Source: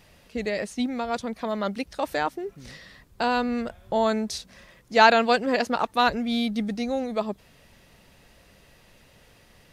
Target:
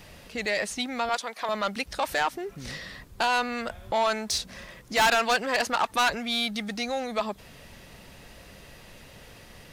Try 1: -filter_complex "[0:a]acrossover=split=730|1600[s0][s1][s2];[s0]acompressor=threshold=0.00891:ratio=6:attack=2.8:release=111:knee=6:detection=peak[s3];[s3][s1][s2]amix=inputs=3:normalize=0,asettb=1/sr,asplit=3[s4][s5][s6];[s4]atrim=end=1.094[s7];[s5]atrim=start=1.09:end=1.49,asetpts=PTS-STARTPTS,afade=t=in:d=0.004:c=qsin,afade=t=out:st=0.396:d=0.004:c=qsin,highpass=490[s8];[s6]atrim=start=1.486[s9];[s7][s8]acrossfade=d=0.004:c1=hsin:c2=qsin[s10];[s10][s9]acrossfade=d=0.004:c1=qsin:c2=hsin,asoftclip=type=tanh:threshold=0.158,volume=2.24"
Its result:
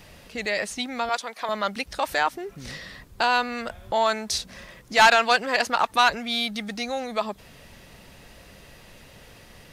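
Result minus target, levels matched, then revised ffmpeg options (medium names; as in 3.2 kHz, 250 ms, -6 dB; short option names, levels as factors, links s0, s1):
saturation: distortion -6 dB
-filter_complex "[0:a]acrossover=split=730|1600[s0][s1][s2];[s0]acompressor=threshold=0.00891:ratio=6:attack=2.8:release=111:knee=6:detection=peak[s3];[s3][s1][s2]amix=inputs=3:normalize=0,asettb=1/sr,asplit=3[s4][s5][s6];[s4]atrim=end=1.094[s7];[s5]atrim=start=1.09:end=1.49,asetpts=PTS-STARTPTS,afade=t=in:d=0.004:c=qsin,afade=t=out:st=0.396:d=0.004:c=qsin,highpass=490[s8];[s6]atrim=start=1.486[s9];[s7][s8]acrossfade=d=0.004:c1=hsin:c2=qsin[s10];[s10][s9]acrossfade=d=0.004:c1=qsin:c2=hsin,asoftclip=type=tanh:threshold=0.0562,volume=2.24"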